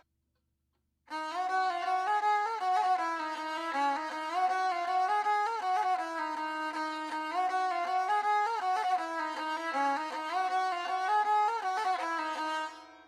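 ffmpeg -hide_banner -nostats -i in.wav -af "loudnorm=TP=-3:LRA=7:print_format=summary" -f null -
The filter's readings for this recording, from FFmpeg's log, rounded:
Input Integrated:    -31.4 LUFS
Input True Peak:     -18.4 dBTP
Input LRA:             0.6 LU
Input Threshold:     -41.5 LUFS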